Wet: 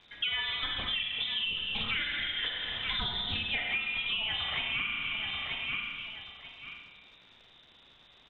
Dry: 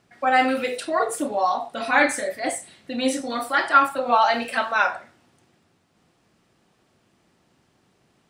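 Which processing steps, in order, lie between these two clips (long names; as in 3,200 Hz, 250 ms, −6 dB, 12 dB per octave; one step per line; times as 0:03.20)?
sub-octave generator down 1 octave, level −5 dB
voice inversion scrambler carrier 3,800 Hz
repeating echo 934 ms, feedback 22%, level −17 dB
four-comb reverb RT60 1.5 s, combs from 32 ms, DRR 3 dB
in parallel at −2 dB: brickwall limiter −13 dBFS, peak gain reduction 11 dB
on the sum: low-shelf EQ 330 Hz +8.5 dB
surface crackle 180 per second −44 dBFS
high-frequency loss of the air 170 metres
downward compressor 10 to 1, threshold −30 dBFS, peak gain reduction 20 dB
highs frequency-modulated by the lows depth 0.14 ms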